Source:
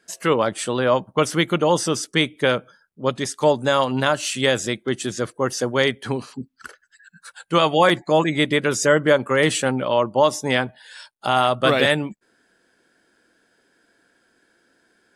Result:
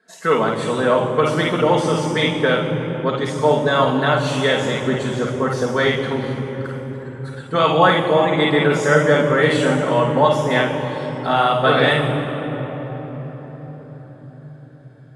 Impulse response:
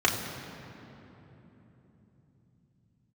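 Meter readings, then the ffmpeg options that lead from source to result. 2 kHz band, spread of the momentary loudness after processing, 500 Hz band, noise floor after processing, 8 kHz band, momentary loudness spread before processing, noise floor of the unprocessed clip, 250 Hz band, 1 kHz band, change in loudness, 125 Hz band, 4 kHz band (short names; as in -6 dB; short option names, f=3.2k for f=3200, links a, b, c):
+3.0 dB, 14 LU, +3.0 dB, -41 dBFS, -7.0 dB, 9 LU, -64 dBFS, +3.0 dB, +3.5 dB, +2.5 dB, +6.0 dB, 0.0 dB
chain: -filter_complex "[1:a]atrim=start_sample=2205,asetrate=26019,aresample=44100[a];[0:a][a]afir=irnorm=-1:irlink=0,volume=-15.5dB"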